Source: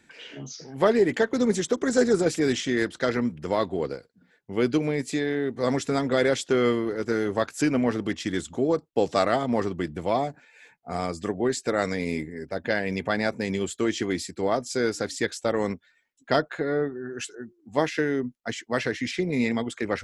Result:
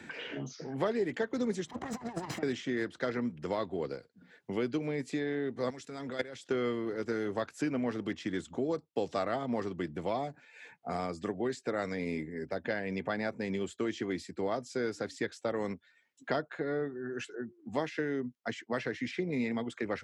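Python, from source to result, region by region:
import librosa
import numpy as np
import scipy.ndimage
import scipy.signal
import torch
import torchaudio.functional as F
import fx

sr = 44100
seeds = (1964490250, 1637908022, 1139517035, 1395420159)

y = fx.chain(x, sr, fx.lower_of_two(delay_ms=1.0),
    fx.highpass(hz=41.0, slope=12),
    fx.over_compress(threshold_db=-33.0, ratio=-0.5), at=(1.67, 2.43))
y = fx.chain(y, sr, fx.high_shelf(hz=2400.0, db=10.5),
    fx.level_steps(step_db=19), at=(5.7, 6.51))
y = scipy.signal.sosfilt(scipy.signal.butter(2, 77.0, 'highpass', fs=sr, output='sos'), y)
y = fx.high_shelf(y, sr, hz=6700.0, db=-11.5)
y = fx.band_squash(y, sr, depth_pct=70)
y = y * 10.0 ** (-8.5 / 20.0)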